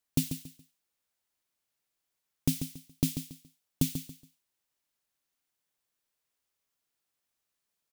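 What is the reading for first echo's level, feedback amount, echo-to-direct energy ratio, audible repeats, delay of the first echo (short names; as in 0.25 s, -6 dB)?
-9.0 dB, 26%, -8.5 dB, 3, 0.14 s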